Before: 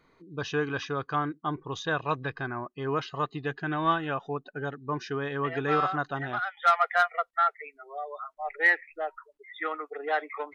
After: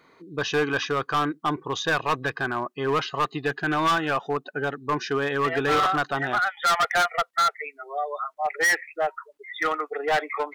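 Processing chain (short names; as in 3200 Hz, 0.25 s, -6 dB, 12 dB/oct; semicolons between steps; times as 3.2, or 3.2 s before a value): HPF 270 Hz 6 dB/oct; hard clip -26.5 dBFS, distortion -7 dB; gain +8.5 dB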